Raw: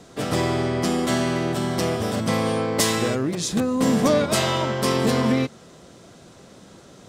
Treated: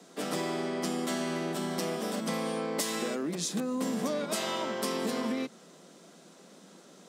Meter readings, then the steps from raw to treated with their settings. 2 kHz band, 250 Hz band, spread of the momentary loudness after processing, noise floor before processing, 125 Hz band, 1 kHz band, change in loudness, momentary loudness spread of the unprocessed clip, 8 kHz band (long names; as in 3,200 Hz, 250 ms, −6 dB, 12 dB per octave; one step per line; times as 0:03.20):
−10.0 dB, −10.5 dB, 2 LU, −48 dBFS, −16.5 dB, −10.0 dB, −10.0 dB, 5 LU, −8.0 dB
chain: Butterworth high-pass 160 Hz 72 dB per octave
high-shelf EQ 6,800 Hz +5 dB
downward compressor, threshold −21 dBFS, peak gain reduction 7.5 dB
level −7 dB